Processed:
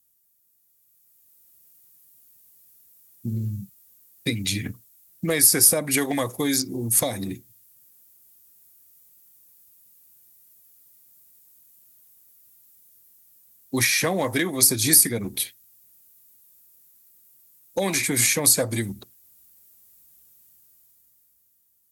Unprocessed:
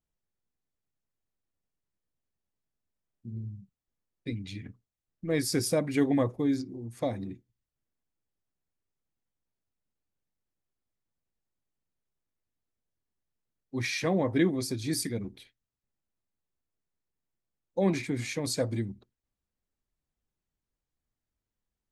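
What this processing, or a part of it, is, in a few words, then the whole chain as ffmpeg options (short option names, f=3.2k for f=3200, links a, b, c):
FM broadcast chain: -filter_complex "[0:a]highpass=70,dynaudnorm=f=140:g=17:m=11dB,acrossover=split=620|2100[a][b][c];[a]acompressor=threshold=-29dB:ratio=4[d];[b]acompressor=threshold=-27dB:ratio=4[e];[c]acompressor=threshold=-38dB:ratio=4[f];[d][e][f]amix=inputs=3:normalize=0,aemphasis=mode=production:type=50fm,alimiter=limit=-17.5dB:level=0:latency=1:release=469,asoftclip=type=hard:threshold=-19.5dB,lowpass=f=15k:w=0.5412,lowpass=f=15k:w=1.3066,aemphasis=mode=production:type=50fm,volume=5dB"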